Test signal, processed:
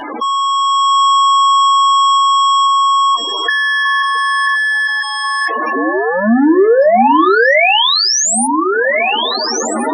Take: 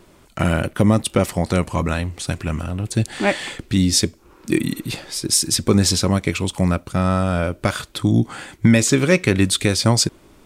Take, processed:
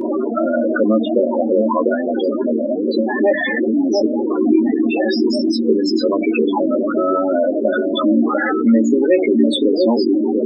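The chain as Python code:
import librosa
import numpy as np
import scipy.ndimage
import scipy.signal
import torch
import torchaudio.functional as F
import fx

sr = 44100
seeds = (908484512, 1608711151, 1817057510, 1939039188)

y = x + 0.5 * 10.0 ** (-18.0 / 20.0) * np.sign(x)
y = fx.recorder_agc(y, sr, target_db=-8.5, rise_db_per_s=15.0, max_gain_db=30)
y = fx.high_shelf(y, sr, hz=2400.0, db=-11.0)
y = fx.echo_alternate(y, sr, ms=695, hz=920.0, feedback_pct=67, wet_db=-5.0)
y = fx.dynamic_eq(y, sr, hz=1300.0, q=2.6, threshold_db=-25.0, ratio=4.0, max_db=-4)
y = fx.spec_topn(y, sr, count=16)
y = fx.brickwall_bandpass(y, sr, low_hz=220.0, high_hz=9800.0)
y = fx.hum_notches(y, sr, base_hz=50, count=7)
y = fx.doubler(y, sr, ms=13.0, db=-6.0)
y = fx.env_flatten(y, sr, amount_pct=50)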